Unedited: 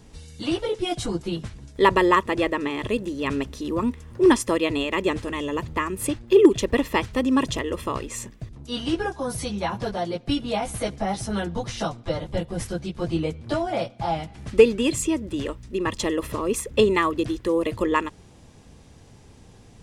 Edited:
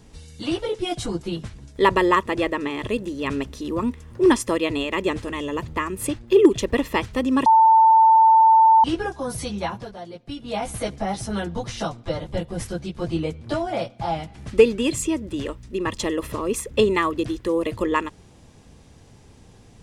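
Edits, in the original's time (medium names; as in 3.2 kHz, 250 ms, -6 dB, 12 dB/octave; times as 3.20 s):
7.46–8.84 s: bleep 892 Hz -10 dBFS
9.65–10.61 s: dip -9.5 dB, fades 0.23 s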